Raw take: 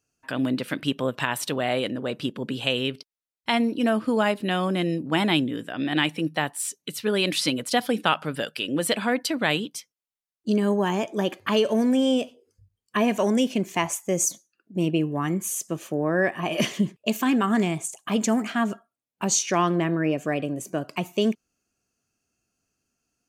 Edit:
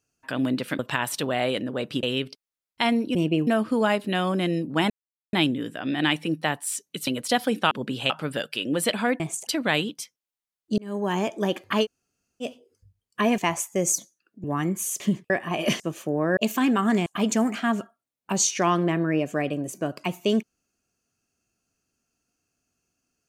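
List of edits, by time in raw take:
0.79–1.08 s: delete
2.32–2.71 s: move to 8.13 s
5.26 s: insert silence 0.43 s
7.00–7.49 s: delete
10.54–10.93 s: fade in linear
11.60–12.19 s: room tone, crossfade 0.06 s
13.14–13.71 s: delete
14.77–15.09 s: move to 3.83 s
15.65–16.22 s: swap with 16.72–17.02 s
17.71–17.98 s: move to 9.23 s

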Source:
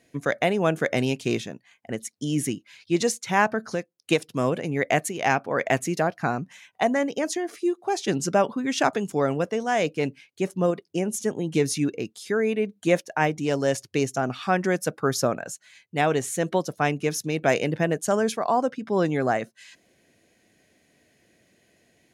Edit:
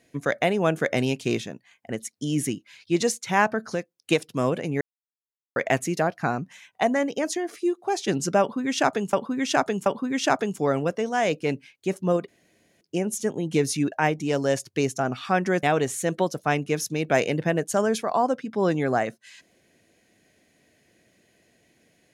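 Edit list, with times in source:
4.81–5.56 s: mute
8.40–9.13 s: loop, 3 plays
10.82 s: insert room tone 0.53 s
11.93–13.10 s: delete
14.81–15.97 s: delete

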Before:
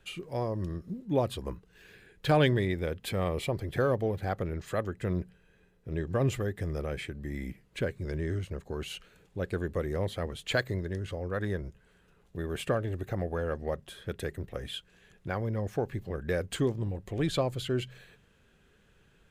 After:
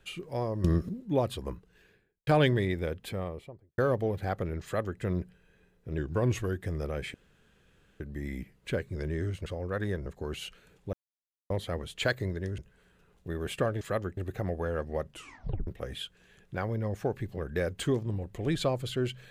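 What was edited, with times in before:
0.64–0.89 s: gain +11 dB
1.53–2.27 s: studio fade out
2.77–3.78 s: studio fade out
4.64–5.00 s: copy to 12.90 s
5.98–6.57 s: speed 92%
7.09 s: insert room tone 0.86 s
9.42–9.99 s: mute
11.07–11.67 s: move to 8.55 s
13.83 s: tape stop 0.57 s

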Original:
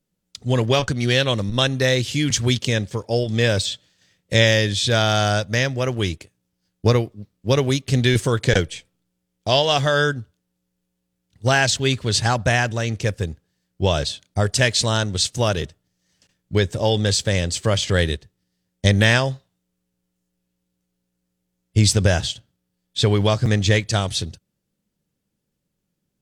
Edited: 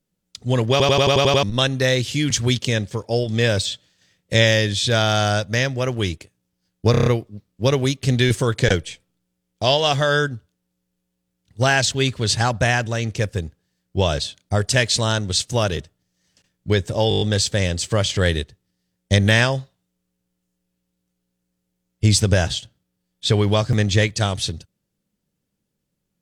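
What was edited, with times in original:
0.71 s: stutter in place 0.09 s, 8 plays
6.91 s: stutter 0.03 s, 6 plays
16.94 s: stutter 0.02 s, 7 plays

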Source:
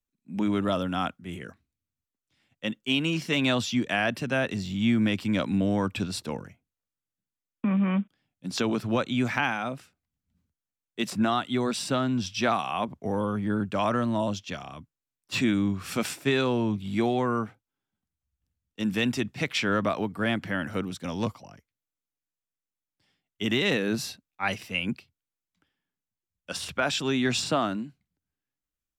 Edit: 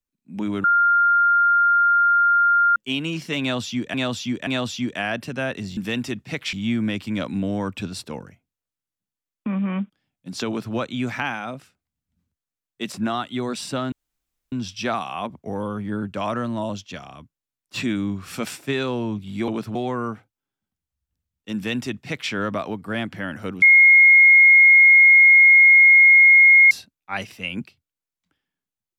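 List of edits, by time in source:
0.64–2.76 s: bleep 1.4 kHz -13.5 dBFS
3.41–3.94 s: loop, 3 plays
8.65–8.92 s: copy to 17.06 s
12.10 s: insert room tone 0.60 s
18.86–19.62 s: copy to 4.71 s
20.93–24.02 s: bleep 2.15 kHz -8 dBFS

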